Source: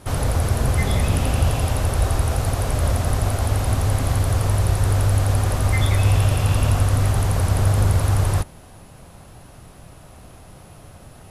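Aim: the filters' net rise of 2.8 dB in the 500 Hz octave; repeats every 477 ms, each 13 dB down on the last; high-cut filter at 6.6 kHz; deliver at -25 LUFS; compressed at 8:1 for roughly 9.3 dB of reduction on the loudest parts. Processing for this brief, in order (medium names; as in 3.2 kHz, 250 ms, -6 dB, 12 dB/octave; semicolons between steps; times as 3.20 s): low-pass 6.6 kHz; peaking EQ 500 Hz +3.5 dB; compression 8:1, threshold -23 dBFS; feedback delay 477 ms, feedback 22%, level -13 dB; trim +2.5 dB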